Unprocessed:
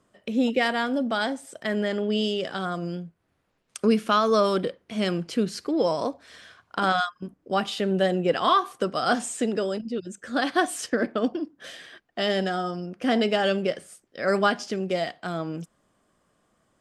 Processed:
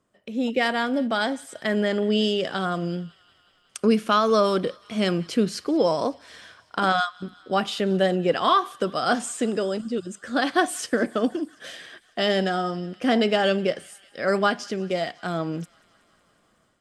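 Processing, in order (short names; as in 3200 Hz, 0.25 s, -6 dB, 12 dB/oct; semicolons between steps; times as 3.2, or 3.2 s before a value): AGC gain up to 9.5 dB; thin delay 0.184 s, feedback 73%, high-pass 1600 Hz, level -22.5 dB; gain -6 dB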